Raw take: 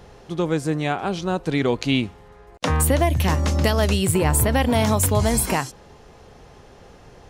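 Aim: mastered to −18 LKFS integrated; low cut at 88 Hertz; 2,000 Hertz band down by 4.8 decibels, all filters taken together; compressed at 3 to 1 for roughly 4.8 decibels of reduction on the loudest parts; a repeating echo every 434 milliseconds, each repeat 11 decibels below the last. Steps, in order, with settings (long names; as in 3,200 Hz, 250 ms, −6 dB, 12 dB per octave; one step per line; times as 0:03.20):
high-pass filter 88 Hz
parametric band 2,000 Hz −6 dB
downward compressor 3 to 1, threshold −22 dBFS
repeating echo 434 ms, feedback 28%, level −11 dB
level +8 dB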